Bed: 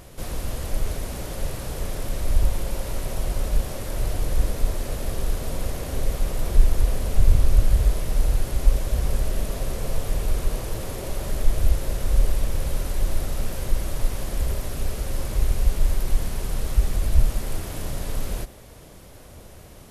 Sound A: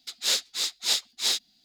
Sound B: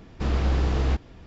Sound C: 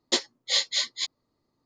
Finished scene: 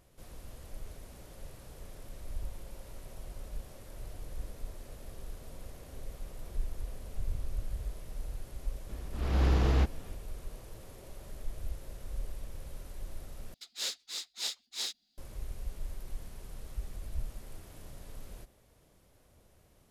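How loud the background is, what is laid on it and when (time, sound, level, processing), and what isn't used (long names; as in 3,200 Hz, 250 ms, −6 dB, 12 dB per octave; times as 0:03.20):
bed −19 dB
0:08.89: mix in B −2.5 dB + volume swells 359 ms
0:13.54: overwrite with A −11 dB + parametric band 130 Hz −11.5 dB 0.31 octaves
not used: C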